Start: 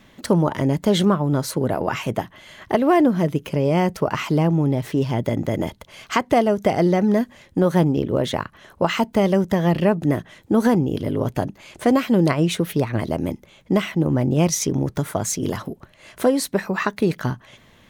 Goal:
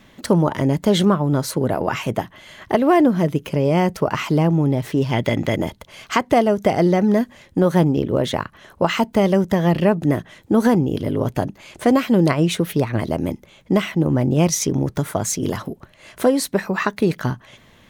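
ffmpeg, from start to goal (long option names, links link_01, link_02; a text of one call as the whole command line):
ffmpeg -i in.wav -filter_complex "[0:a]asplit=3[link_01][link_02][link_03];[link_01]afade=type=out:start_time=5.11:duration=0.02[link_04];[link_02]equalizer=frequency=2700:width=0.62:gain=10,afade=type=in:start_time=5.11:duration=0.02,afade=type=out:start_time=5.54:duration=0.02[link_05];[link_03]afade=type=in:start_time=5.54:duration=0.02[link_06];[link_04][link_05][link_06]amix=inputs=3:normalize=0,volume=1.5dB" out.wav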